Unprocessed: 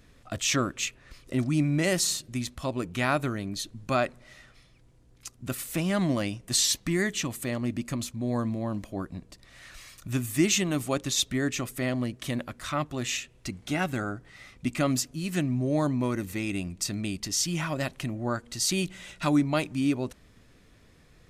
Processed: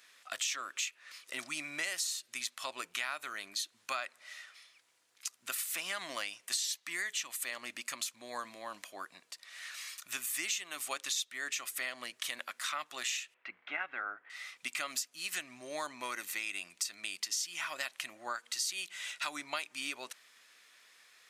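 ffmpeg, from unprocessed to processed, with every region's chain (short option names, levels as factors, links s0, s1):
-filter_complex "[0:a]asettb=1/sr,asplit=3[s0][s1][s2];[s0]atrim=end=13.344[s3];[s1]atrim=start=13.34:end=14.3,asetpts=PTS-STARTPTS,afade=t=in:d=0.004:c=qsin,afade=t=out:st=0.956:d=0.004:c=qsin,lowpass=f=2300:w=0.5412,lowpass=f=2300:w=1.3066,equalizer=f=130:w=1.4:g=-7.5[s4];[s2]atrim=start=14.296[s5];[s3][s4]acrossfade=d=0.004:c1=hsin:c2=qsin[s6];[s6][s5]acrossfade=d=0.004:c1=qsin:c2=hsin,highpass=1400,acompressor=threshold=0.0126:ratio=6,volume=1.68"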